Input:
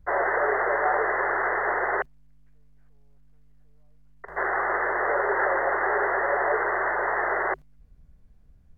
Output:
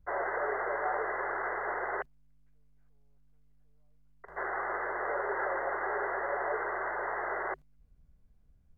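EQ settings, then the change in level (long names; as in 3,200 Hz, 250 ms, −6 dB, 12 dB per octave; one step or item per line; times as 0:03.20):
notch filter 1,800 Hz, Q 15
−8.5 dB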